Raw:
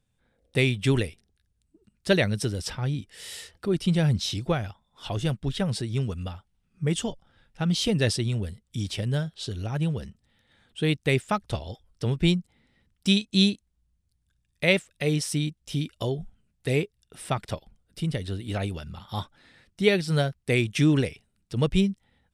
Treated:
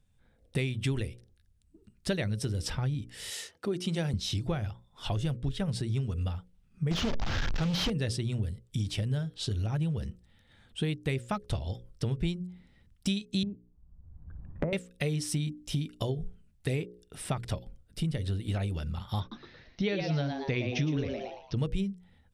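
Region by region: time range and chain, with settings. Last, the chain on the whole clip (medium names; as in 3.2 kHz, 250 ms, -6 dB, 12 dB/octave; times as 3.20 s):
3.30–4.14 s: high-pass 240 Hz + peaking EQ 6.3 kHz +6 dB 0.25 oct + tape noise reduction on one side only decoder only
6.91–7.90 s: one-bit delta coder 32 kbps, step -28.5 dBFS + waveshaping leveller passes 3 + loudspeaker Doppler distortion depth 0.16 ms
13.43–14.73 s: low-pass 1.1 kHz 24 dB/octave + three bands compressed up and down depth 100%
19.20–21.58 s: steep low-pass 6.3 kHz 96 dB/octave + frequency-shifting echo 113 ms, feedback 37%, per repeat +130 Hz, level -7 dB
whole clip: bass shelf 140 Hz +10 dB; hum notches 60/120/180/240/300/360/420/480/540 Hz; compression 5:1, threshold -28 dBFS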